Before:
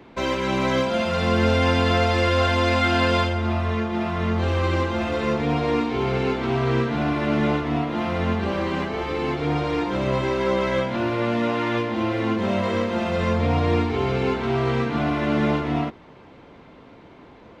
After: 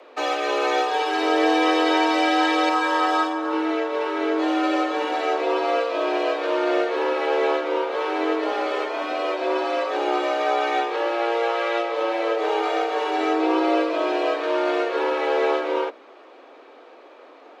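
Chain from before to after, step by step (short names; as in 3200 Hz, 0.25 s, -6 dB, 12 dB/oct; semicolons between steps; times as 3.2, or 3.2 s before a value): 2.69–3.53 ten-band EQ 125 Hz -6 dB, 250 Hz -5 dB, 1000 Hz +6 dB, 2000 Hz -8 dB, 4000 Hz -4 dB; frequency shift +230 Hz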